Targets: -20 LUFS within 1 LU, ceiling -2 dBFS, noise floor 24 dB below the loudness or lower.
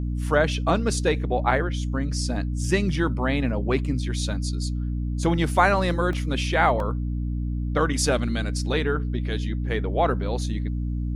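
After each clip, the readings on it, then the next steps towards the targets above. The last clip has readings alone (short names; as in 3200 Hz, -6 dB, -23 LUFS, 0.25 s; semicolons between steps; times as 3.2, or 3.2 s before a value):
dropouts 2; longest dropout 2.0 ms; hum 60 Hz; harmonics up to 300 Hz; hum level -24 dBFS; loudness -24.5 LUFS; peak -5.5 dBFS; loudness target -20.0 LUFS
-> interpolate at 6.13/6.8, 2 ms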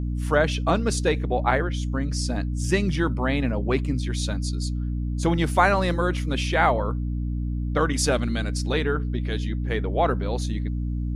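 dropouts 0; hum 60 Hz; harmonics up to 300 Hz; hum level -24 dBFS
-> notches 60/120/180/240/300 Hz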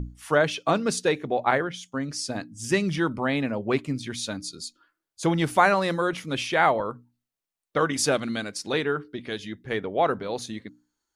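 hum none; loudness -26.0 LUFS; peak -6.0 dBFS; loudness target -20.0 LUFS
-> gain +6 dB; limiter -2 dBFS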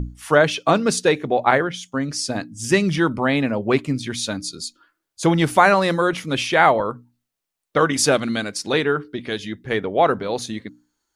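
loudness -20.0 LUFS; peak -2.0 dBFS; noise floor -81 dBFS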